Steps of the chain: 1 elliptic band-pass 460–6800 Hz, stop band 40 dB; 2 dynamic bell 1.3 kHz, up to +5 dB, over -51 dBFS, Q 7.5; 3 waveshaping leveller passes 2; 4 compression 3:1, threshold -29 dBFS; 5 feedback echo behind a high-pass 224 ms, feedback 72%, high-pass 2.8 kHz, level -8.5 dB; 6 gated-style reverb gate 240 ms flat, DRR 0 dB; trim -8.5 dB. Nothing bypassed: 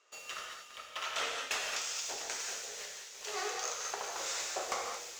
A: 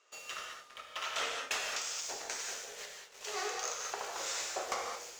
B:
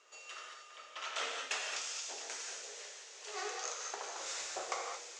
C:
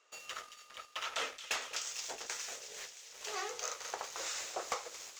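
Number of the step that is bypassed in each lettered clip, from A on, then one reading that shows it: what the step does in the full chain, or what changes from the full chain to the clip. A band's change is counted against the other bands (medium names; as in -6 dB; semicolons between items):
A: 5, momentary loudness spread change +1 LU; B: 3, loudness change -3.5 LU; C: 6, crest factor change +3.0 dB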